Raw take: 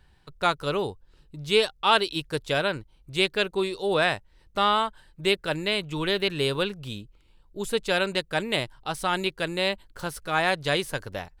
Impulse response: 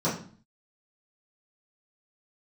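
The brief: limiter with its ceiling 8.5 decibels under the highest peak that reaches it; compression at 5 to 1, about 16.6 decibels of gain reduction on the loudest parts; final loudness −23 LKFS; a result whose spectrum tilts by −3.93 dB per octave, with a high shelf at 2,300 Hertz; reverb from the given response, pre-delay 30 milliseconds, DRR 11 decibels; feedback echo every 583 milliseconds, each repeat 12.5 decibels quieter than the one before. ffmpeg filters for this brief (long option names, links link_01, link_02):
-filter_complex "[0:a]highshelf=frequency=2300:gain=6,acompressor=threshold=-33dB:ratio=5,alimiter=level_in=1.5dB:limit=-24dB:level=0:latency=1,volume=-1.5dB,aecho=1:1:583|1166|1749:0.237|0.0569|0.0137,asplit=2[link_01][link_02];[1:a]atrim=start_sample=2205,adelay=30[link_03];[link_02][link_03]afir=irnorm=-1:irlink=0,volume=-22.5dB[link_04];[link_01][link_04]amix=inputs=2:normalize=0,volume=14.5dB"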